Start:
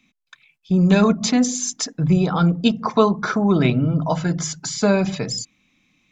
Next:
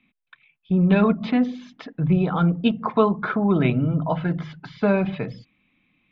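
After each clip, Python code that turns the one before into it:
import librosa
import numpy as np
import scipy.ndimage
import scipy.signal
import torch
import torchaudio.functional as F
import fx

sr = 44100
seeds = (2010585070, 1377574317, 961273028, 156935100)

y = scipy.signal.sosfilt(scipy.signal.butter(6, 3300.0, 'lowpass', fs=sr, output='sos'), x)
y = y * 10.0 ** (-2.5 / 20.0)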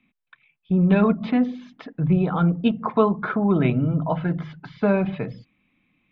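y = fx.high_shelf(x, sr, hz=4200.0, db=-10.0)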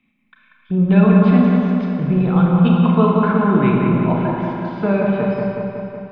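y = fx.echo_wet_lowpass(x, sr, ms=186, feedback_pct=66, hz=2200.0, wet_db=-3.0)
y = fx.rev_schroeder(y, sr, rt60_s=1.8, comb_ms=29, drr_db=0.0)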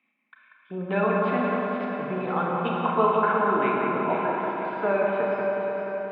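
y = fx.bandpass_edges(x, sr, low_hz=510.0, high_hz=2400.0)
y = fx.echo_feedback(y, sr, ms=478, feedback_pct=52, wet_db=-8)
y = y * 10.0 ** (-1.0 / 20.0)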